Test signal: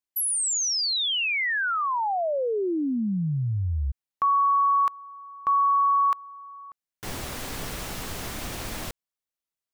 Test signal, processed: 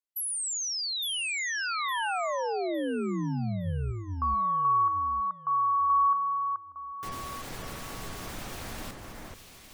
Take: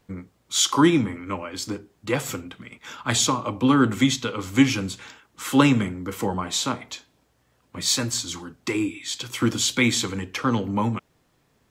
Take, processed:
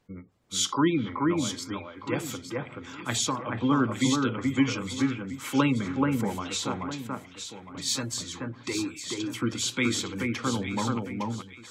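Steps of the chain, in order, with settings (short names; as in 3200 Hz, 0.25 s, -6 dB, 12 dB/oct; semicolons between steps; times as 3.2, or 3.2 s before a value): spectral gate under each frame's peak -30 dB strong; notches 50/100 Hz; on a send: echo with dull and thin repeats by turns 0.43 s, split 2100 Hz, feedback 54%, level -2 dB; on the sum: gain -6.5 dB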